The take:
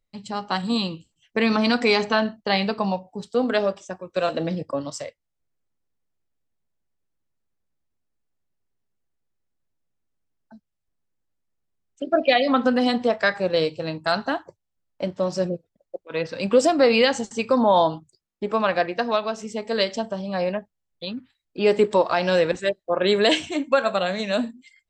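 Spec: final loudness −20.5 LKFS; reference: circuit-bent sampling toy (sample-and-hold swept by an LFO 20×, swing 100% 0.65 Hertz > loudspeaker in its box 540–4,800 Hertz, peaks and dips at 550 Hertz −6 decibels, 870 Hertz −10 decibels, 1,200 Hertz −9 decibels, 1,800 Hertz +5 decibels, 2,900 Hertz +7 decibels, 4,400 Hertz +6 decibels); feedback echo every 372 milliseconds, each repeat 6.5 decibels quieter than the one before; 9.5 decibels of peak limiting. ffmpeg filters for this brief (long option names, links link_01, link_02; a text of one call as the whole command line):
ffmpeg -i in.wav -af "alimiter=limit=-14.5dB:level=0:latency=1,aecho=1:1:372|744|1116|1488|1860|2232:0.473|0.222|0.105|0.0491|0.0231|0.0109,acrusher=samples=20:mix=1:aa=0.000001:lfo=1:lforange=20:lforate=0.65,highpass=540,equalizer=frequency=550:width_type=q:width=4:gain=-6,equalizer=frequency=870:width_type=q:width=4:gain=-10,equalizer=frequency=1200:width_type=q:width=4:gain=-9,equalizer=frequency=1800:width_type=q:width=4:gain=5,equalizer=frequency=2900:width_type=q:width=4:gain=7,equalizer=frequency=4400:width_type=q:width=4:gain=6,lowpass=frequency=4800:width=0.5412,lowpass=frequency=4800:width=1.3066,volume=8.5dB" out.wav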